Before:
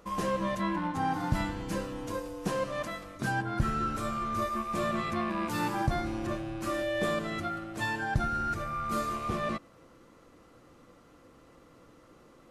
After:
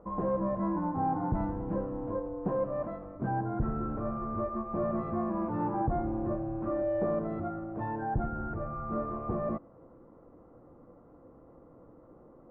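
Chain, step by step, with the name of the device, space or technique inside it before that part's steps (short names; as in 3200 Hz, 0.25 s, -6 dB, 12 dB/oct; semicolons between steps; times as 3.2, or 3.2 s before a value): overdriven synthesiser ladder filter (soft clip -23.5 dBFS, distortion -17 dB; ladder low-pass 1100 Hz, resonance 20%); gain +7 dB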